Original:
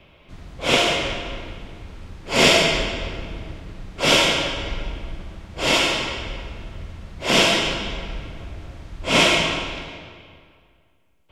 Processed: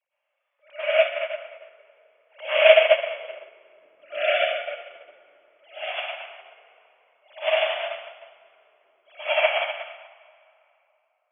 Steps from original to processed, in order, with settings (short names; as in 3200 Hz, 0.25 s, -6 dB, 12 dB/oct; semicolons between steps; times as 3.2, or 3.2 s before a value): sine-wave speech; reverb RT60 3.2 s, pre-delay 92 ms, DRR -13 dB; upward expander 2.5:1, over -16 dBFS; gain -9.5 dB